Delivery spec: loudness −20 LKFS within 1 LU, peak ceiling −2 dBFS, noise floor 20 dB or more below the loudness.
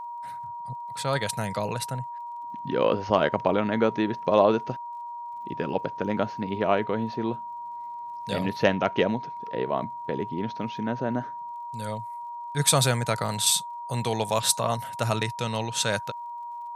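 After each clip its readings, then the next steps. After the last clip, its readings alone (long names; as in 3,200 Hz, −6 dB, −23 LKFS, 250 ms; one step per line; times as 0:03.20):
crackle rate 46 per second; interfering tone 950 Hz; level of the tone −34 dBFS; integrated loudness −27.5 LKFS; sample peak −4.5 dBFS; target loudness −20.0 LKFS
→ click removal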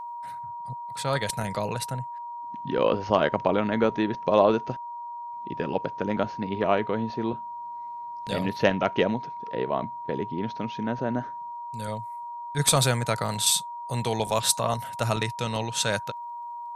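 crackle rate 0.72 per second; interfering tone 950 Hz; level of the tone −34 dBFS
→ notch filter 950 Hz, Q 30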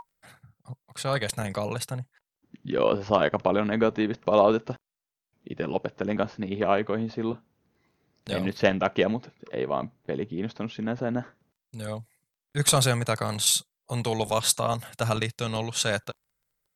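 interfering tone none found; integrated loudness −27.0 LKFS; sample peak −5.5 dBFS; target loudness −20.0 LKFS
→ level +7 dB
brickwall limiter −2 dBFS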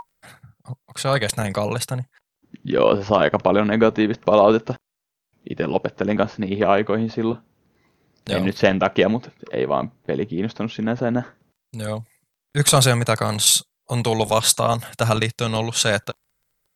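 integrated loudness −20.5 LKFS; sample peak −2.0 dBFS; background noise floor −81 dBFS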